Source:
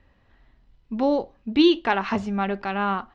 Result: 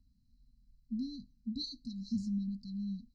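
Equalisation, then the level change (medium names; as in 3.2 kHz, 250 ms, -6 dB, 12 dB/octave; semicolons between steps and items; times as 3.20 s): brick-wall FIR band-stop 270–3900 Hz; peaking EQ 94 Hz -6 dB 0.77 oct; -6.5 dB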